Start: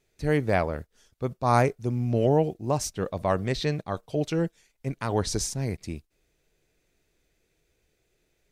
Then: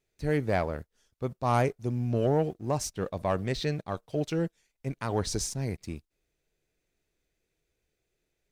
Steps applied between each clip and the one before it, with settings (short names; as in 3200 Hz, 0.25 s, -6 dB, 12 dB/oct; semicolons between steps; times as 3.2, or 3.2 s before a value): sample leveller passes 1; gain -6.5 dB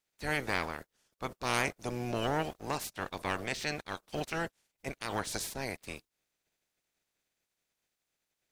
spectral limiter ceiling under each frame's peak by 24 dB; gain -5.5 dB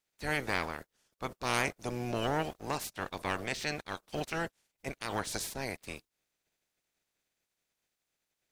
nothing audible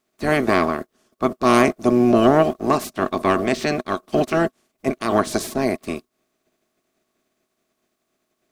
small resonant body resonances 250/360/630/1100 Hz, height 16 dB, ringing for 40 ms; gain +7 dB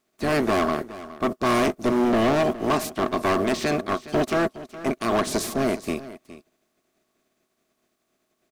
hard clip -17.5 dBFS, distortion -7 dB; echo 0.415 s -16 dB